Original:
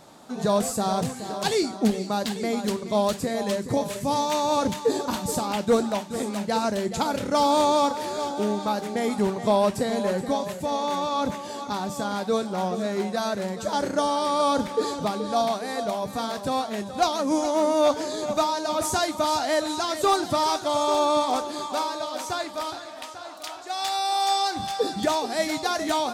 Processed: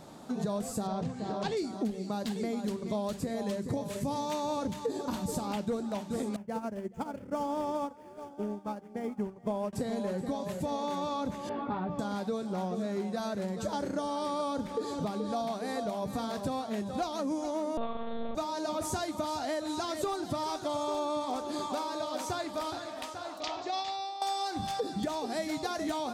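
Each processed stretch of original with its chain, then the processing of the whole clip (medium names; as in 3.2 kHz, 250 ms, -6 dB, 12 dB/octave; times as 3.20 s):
0.87–1.57 s: distance through air 110 m + hum notches 60/120/180/240/300/360/420/480/540 Hz
6.36–9.73 s: median filter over 9 samples + peaking EQ 3.9 kHz -15 dB 0.2 oct + upward expansion 2.5:1, over -33 dBFS
11.49–11.99 s: low-pass 2.6 kHz 24 dB/octave + doubling 17 ms -5.5 dB
17.77–18.35 s: flutter echo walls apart 8.2 m, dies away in 0.83 s + monotone LPC vocoder at 8 kHz 230 Hz
23.40–24.22 s: low-pass 5.7 kHz 24 dB/octave + peaking EQ 1.5 kHz -10.5 dB 0.24 oct + compressor with a negative ratio -30 dBFS, ratio -0.5
whole clip: bass shelf 440 Hz +8.5 dB; hum notches 60/120 Hz; compression, threshold -27 dBFS; trim -3.5 dB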